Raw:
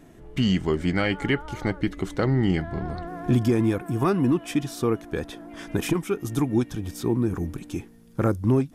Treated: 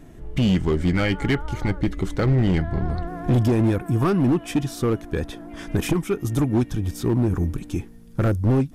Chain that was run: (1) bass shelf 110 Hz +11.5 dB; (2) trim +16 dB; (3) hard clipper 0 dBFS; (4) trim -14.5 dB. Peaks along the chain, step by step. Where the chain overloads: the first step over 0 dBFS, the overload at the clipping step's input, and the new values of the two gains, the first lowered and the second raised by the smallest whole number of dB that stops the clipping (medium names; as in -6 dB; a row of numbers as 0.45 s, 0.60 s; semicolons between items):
-7.5 dBFS, +8.5 dBFS, 0.0 dBFS, -14.5 dBFS; step 2, 8.5 dB; step 2 +7 dB, step 4 -5.5 dB